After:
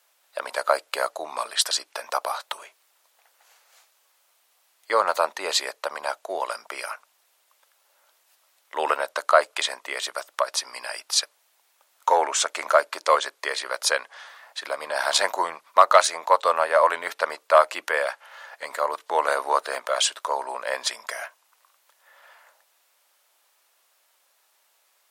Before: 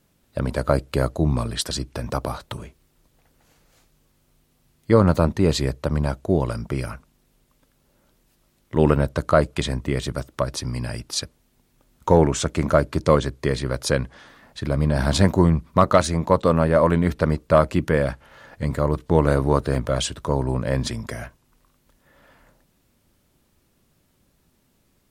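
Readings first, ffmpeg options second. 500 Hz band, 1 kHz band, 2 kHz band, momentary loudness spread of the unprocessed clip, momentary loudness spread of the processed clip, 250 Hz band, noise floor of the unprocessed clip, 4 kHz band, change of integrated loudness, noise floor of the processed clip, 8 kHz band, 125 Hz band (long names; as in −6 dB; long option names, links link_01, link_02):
−3.5 dB, +4.0 dB, +4.5 dB, 12 LU, 15 LU, −25.5 dB, −65 dBFS, +4.5 dB, −2.5 dB, −66 dBFS, +4.5 dB, below −40 dB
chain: -af "highpass=frequency=680:width=0.5412,highpass=frequency=680:width=1.3066,volume=4.5dB"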